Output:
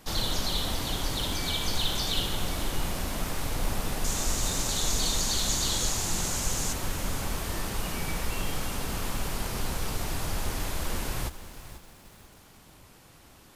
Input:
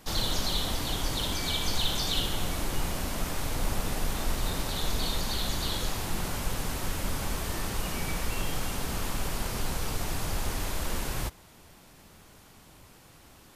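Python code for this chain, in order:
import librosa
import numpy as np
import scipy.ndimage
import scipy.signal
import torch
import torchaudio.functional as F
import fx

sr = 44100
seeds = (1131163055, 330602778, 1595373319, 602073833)

y = fx.peak_eq(x, sr, hz=6800.0, db=13.5, octaves=0.79, at=(4.04, 6.73))
y = fx.echo_crushed(y, sr, ms=486, feedback_pct=35, bits=8, wet_db=-13.0)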